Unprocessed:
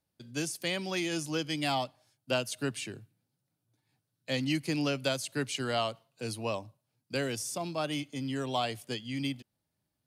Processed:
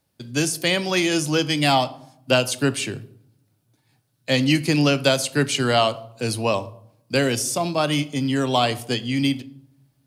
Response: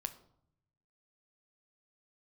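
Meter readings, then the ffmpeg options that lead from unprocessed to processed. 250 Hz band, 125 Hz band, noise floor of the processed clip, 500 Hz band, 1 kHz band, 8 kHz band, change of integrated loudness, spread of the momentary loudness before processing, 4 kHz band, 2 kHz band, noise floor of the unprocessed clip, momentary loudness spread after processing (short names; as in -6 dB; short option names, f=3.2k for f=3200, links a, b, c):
+12.0 dB, +13.0 dB, -68 dBFS, +12.0 dB, +12.0 dB, +12.0 dB, +12.0 dB, 9 LU, +12.0 dB, +12.0 dB, -84 dBFS, 9 LU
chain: -filter_complex "[0:a]asplit=2[a][b];[1:a]atrim=start_sample=2205[c];[b][c]afir=irnorm=-1:irlink=0,volume=6dB[d];[a][d]amix=inputs=2:normalize=0,volume=3.5dB"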